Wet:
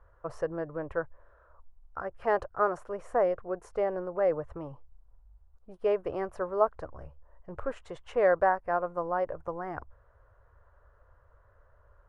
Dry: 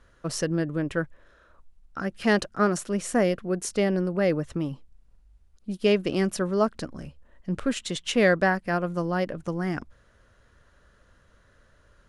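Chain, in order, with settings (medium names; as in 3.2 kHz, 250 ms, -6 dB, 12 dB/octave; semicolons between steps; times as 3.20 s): FFT filter 100 Hz 0 dB, 210 Hz -23 dB, 470 Hz -2 dB, 990 Hz +3 dB, 3.7 kHz -26 dB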